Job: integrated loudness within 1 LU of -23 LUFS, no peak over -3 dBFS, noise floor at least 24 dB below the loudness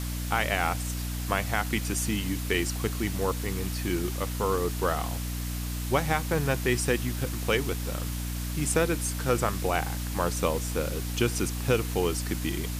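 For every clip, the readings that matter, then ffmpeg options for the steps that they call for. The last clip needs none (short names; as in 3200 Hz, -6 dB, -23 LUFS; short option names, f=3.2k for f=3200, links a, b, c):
hum 60 Hz; harmonics up to 300 Hz; hum level -30 dBFS; noise floor -32 dBFS; noise floor target -53 dBFS; loudness -28.5 LUFS; peak -10.0 dBFS; loudness target -23.0 LUFS
-> -af "bandreject=f=60:t=h:w=6,bandreject=f=120:t=h:w=6,bandreject=f=180:t=h:w=6,bandreject=f=240:t=h:w=6,bandreject=f=300:t=h:w=6"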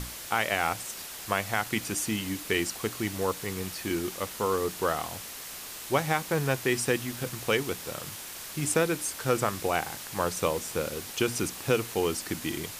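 hum none; noise floor -41 dBFS; noise floor target -54 dBFS
-> -af "afftdn=nr=13:nf=-41"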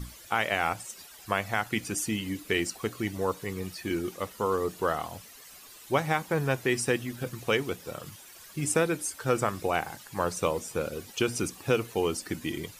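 noise floor -50 dBFS; noise floor target -54 dBFS
-> -af "afftdn=nr=6:nf=-50"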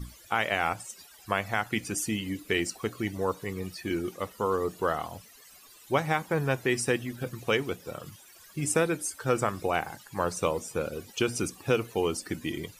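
noise floor -54 dBFS; loudness -30.0 LUFS; peak -11.0 dBFS; loudness target -23.0 LUFS
-> -af "volume=7dB"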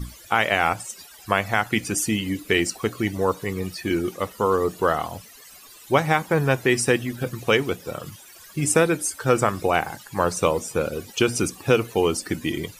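loudness -23.0 LUFS; peak -4.0 dBFS; noise floor -47 dBFS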